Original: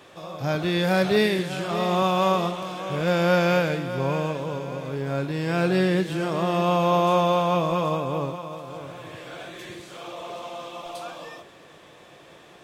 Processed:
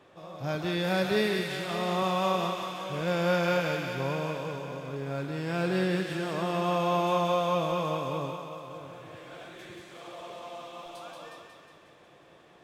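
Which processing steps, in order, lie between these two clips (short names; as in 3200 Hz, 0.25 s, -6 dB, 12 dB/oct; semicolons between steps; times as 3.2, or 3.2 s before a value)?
thinning echo 0.181 s, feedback 68%, high-pass 850 Hz, level -3.5 dB; mismatched tape noise reduction decoder only; gain -6.5 dB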